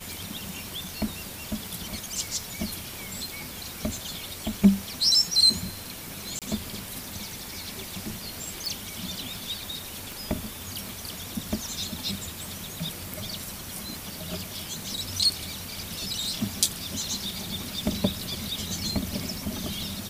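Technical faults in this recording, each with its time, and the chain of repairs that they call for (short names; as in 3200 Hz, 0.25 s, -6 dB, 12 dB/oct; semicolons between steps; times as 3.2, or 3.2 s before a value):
tick 78 rpm
6.39–6.42 gap 27 ms
8.66 pop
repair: de-click; interpolate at 6.39, 27 ms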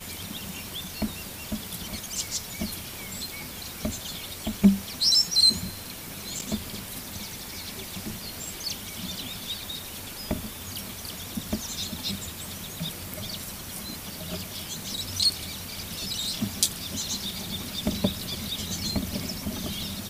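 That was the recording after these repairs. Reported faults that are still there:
none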